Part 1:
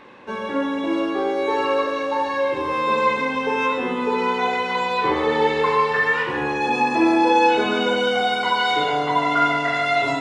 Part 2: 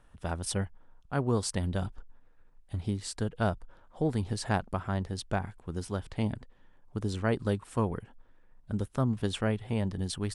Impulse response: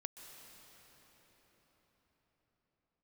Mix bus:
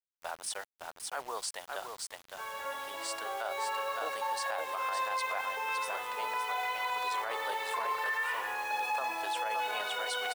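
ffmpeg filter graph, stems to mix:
-filter_complex "[0:a]alimiter=limit=-12.5dB:level=0:latency=1:release=70,adelay=2100,volume=-9.5dB[a];[1:a]volume=0.5dB,asplit=2[b][c];[c]volume=-6dB,aecho=0:1:563:1[d];[a][b][d]amix=inputs=3:normalize=0,highpass=f=650:w=0.5412,highpass=f=650:w=1.3066,acrusher=bits=7:mix=0:aa=0.000001,alimiter=level_in=1dB:limit=-24dB:level=0:latency=1:release=16,volume=-1dB"

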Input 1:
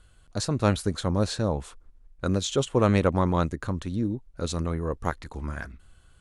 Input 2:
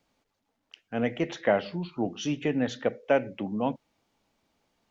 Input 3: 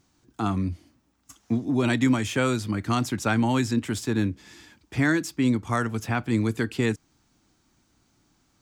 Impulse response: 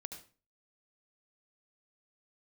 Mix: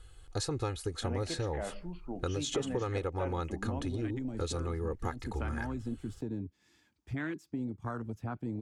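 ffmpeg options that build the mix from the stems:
-filter_complex "[0:a]aecho=1:1:2.4:0.9,volume=-1dB[a];[1:a]equalizer=f=3.8k:t=o:w=0.42:g=-13,alimiter=limit=-19.5dB:level=0:latency=1:release=33,adelay=100,volume=-10dB[b];[2:a]afwtdn=0.0501,acompressor=threshold=-39dB:ratio=2,adelay=2150,volume=-1.5dB[c];[a][c]amix=inputs=2:normalize=0,acompressor=threshold=-31dB:ratio=8,volume=0dB[d];[b][d]amix=inputs=2:normalize=0"

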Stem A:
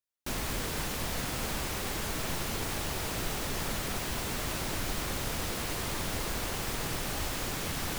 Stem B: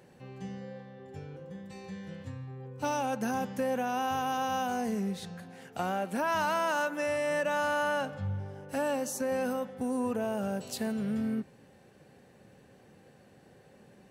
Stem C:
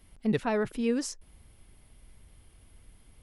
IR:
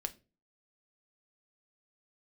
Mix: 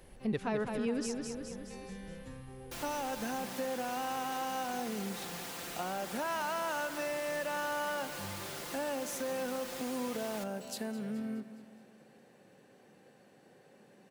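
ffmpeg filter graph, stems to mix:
-filter_complex "[0:a]highpass=f=400:p=1,aecho=1:1:5.8:0.9,adelay=2450,volume=-9dB,asplit=2[a][b];[b]volume=-15.5dB[c];[1:a]highpass=190,volume=-2dB,asplit=2[d][e];[e]volume=-15.5dB[f];[2:a]volume=-1dB,asplit=2[g][h];[h]volume=-6.5dB[i];[c][f][i]amix=inputs=3:normalize=0,aecho=0:1:210|420|630|840|1050|1260|1470:1|0.5|0.25|0.125|0.0625|0.0312|0.0156[j];[a][d][g][j]amix=inputs=4:normalize=0,acompressor=threshold=-39dB:ratio=1.5"

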